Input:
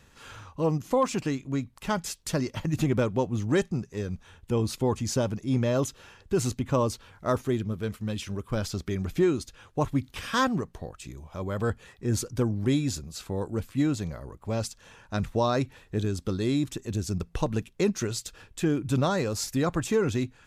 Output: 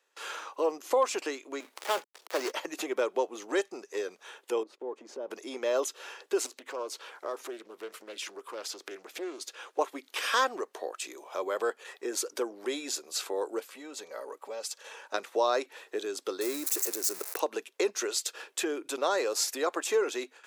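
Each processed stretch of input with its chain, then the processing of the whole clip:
1.60–2.52 s: dead-time distortion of 0.26 ms + high-pass 210 Hz + transient shaper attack -2 dB, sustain +10 dB
4.63–5.31 s: companding laws mixed up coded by A + band-pass filter 200 Hz, Q 0.54 + compression, threshold -33 dBFS
6.46–9.79 s: compression 4:1, threshold -40 dBFS + loudspeaker Doppler distortion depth 0.36 ms
13.68–15.14 s: compression 16:1, threshold -35 dBFS + comb of notches 350 Hz
16.41–17.40 s: zero-crossing glitches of -23.5 dBFS + peaking EQ 3.2 kHz -11.5 dB 0.54 oct
whole clip: compression 2:1, threshold -35 dBFS; gate with hold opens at -45 dBFS; steep high-pass 370 Hz 36 dB/octave; trim +7.5 dB

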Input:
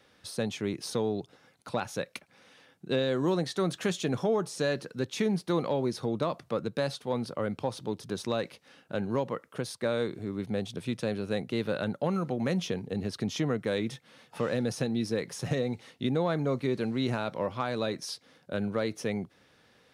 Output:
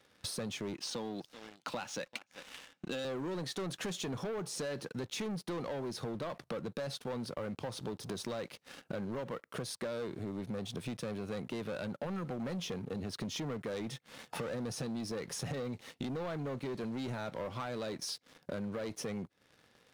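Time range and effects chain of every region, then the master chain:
0.74–3.05 s: cabinet simulation 230–7800 Hz, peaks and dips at 410 Hz -10 dB, 670 Hz -3 dB, 2.9 kHz +6 dB + delay 389 ms -23 dB
whole clip: waveshaping leveller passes 3; compression 5:1, threshold -39 dBFS

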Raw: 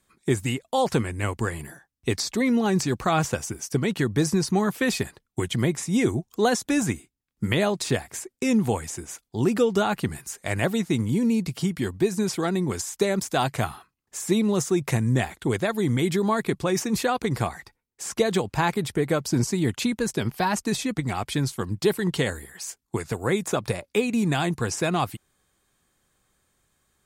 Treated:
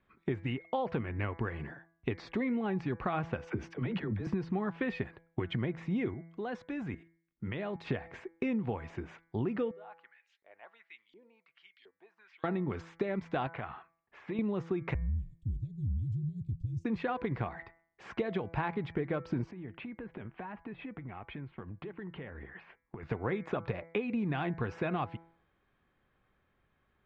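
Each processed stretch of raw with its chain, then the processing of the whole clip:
3.47–4.27 s: compressor with a negative ratio -29 dBFS + phase dispersion lows, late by 47 ms, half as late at 460 Hz
6.14–7.87 s: treble shelf 8.7 kHz +9.5 dB + level held to a coarse grid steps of 17 dB
9.71–12.44 s: differentiator + LFO band-pass saw up 1.4 Hz 390–4800 Hz
13.47–14.39 s: low-pass 3.1 kHz + bass shelf 460 Hz -8.5 dB + compression, threshold -30 dBFS
14.94–16.85 s: Chebyshev band-stop 160–7700 Hz, order 3 + frequency shift -49 Hz + dynamic bell 190 Hz, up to +3 dB, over -46 dBFS, Q 1.3
19.51–23.03 s: low-pass 2.9 kHz 24 dB/octave + compression 12:1, threshold -37 dBFS
whole clip: low-pass 2.7 kHz 24 dB/octave; de-hum 166 Hz, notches 14; compression, threshold -28 dBFS; trim -2 dB

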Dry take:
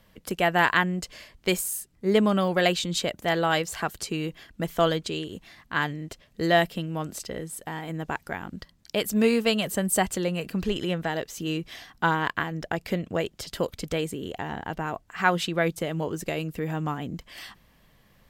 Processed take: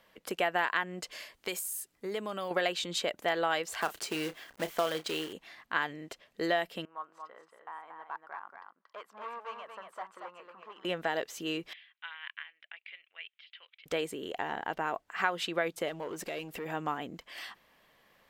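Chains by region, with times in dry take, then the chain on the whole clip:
1.11–2.51 s: treble shelf 5.1 kHz +9.5 dB + compression 5:1, threshold -28 dBFS
3.81–5.33 s: companded quantiser 4-bit + doubling 32 ms -13 dB
6.85–10.85 s: overload inside the chain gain 23 dB + band-pass filter 1.1 kHz, Q 4.3 + delay 231 ms -5.5 dB
11.73–13.86 s: Butterworth band-pass 2.8 kHz, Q 1.8 + distance through air 340 m
15.88–16.66 s: compression 5:1, threshold -36 dBFS + waveshaping leveller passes 2
whole clip: bass shelf 190 Hz -9.5 dB; compression 6:1, threshold -25 dBFS; tone controls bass -11 dB, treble -6 dB

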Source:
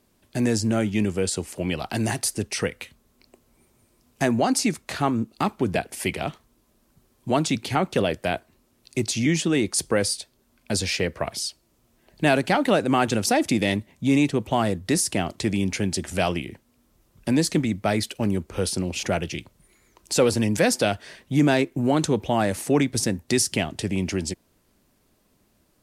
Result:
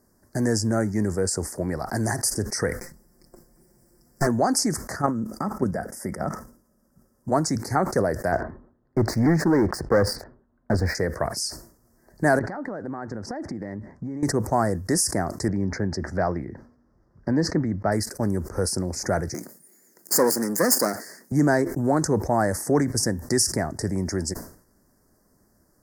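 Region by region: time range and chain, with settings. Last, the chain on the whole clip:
2.80–4.27 s: comb filter that takes the minimum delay 0.38 ms + comb 5.7 ms, depth 76% + upward compressor, threshold -56 dBFS
4.96–7.32 s: level held to a coarse grid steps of 10 dB + brick-wall FIR band-stop 2.3–4.6 kHz + small resonant body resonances 200/540/1300/3800 Hz, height 8 dB, ringing for 40 ms
8.32–10.95 s: level-controlled noise filter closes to 1.6 kHz, open at -18.5 dBFS + distance through air 480 m + waveshaping leveller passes 2
12.39–14.23 s: low-pass 2.5 kHz + compression 10:1, threshold -30 dBFS
15.48–17.92 s: high-pass 40 Hz + distance through air 250 m
19.34–21.32 s: comb filter that takes the minimum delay 0.42 ms + high-pass 190 Hz 24 dB/octave + treble shelf 6.6 kHz +10.5 dB
whole clip: dynamic bell 220 Hz, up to -4 dB, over -31 dBFS, Q 0.77; elliptic band-stop 1.8–5 kHz, stop band 70 dB; decay stretcher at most 110 dB/s; trim +2 dB

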